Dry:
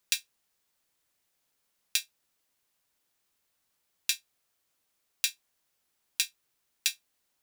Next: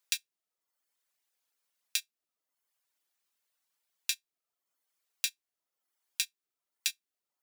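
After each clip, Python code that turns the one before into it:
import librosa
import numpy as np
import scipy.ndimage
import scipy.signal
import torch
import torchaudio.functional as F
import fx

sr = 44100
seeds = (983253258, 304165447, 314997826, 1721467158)

y = fx.highpass(x, sr, hz=640.0, slope=6)
y = fx.dereverb_blind(y, sr, rt60_s=0.79)
y = F.gain(torch.from_numpy(y), -3.0).numpy()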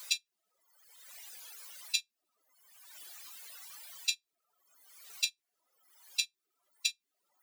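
y = fx.spec_expand(x, sr, power=2.3)
y = fx.band_squash(y, sr, depth_pct=100)
y = F.gain(torch.from_numpy(y), 3.0).numpy()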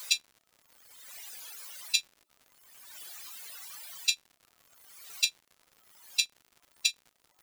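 y = fx.dmg_crackle(x, sr, seeds[0], per_s=140.0, level_db=-50.0)
y = F.gain(torch.from_numpy(y), 4.5).numpy()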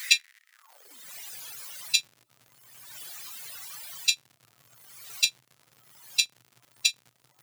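y = fx.filter_sweep_highpass(x, sr, from_hz=1900.0, to_hz=120.0, start_s=0.52, end_s=1.12, q=6.8)
y = F.gain(torch.from_numpy(y), 3.5).numpy()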